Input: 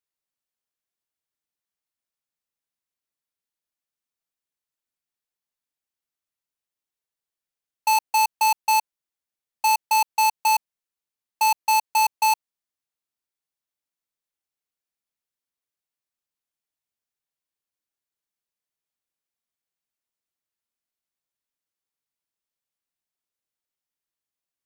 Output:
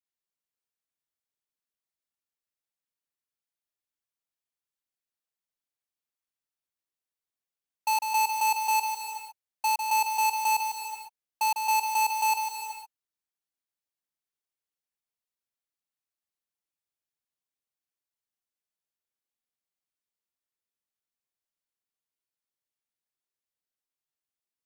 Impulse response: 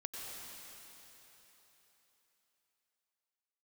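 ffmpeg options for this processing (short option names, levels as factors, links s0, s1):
-filter_complex "[0:a]asplit=2[s0][s1];[1:a]atrim=start_sample=2205,afade=t=out:st=0.42:d=0.01,atrim=end_sample=18963,adelay=150[s2];[s1][s2]afir=irnorm=-1:irlink=0,volume=0.841[s3];[s0][s3]amix=inputs=2:normalize=0,volume=0.473"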